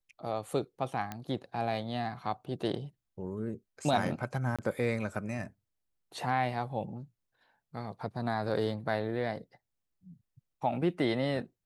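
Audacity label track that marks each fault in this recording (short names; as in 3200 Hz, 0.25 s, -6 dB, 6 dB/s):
1.120000	1.120000	pop -22 dBFS
4.560000	4.590000	gap 26 ms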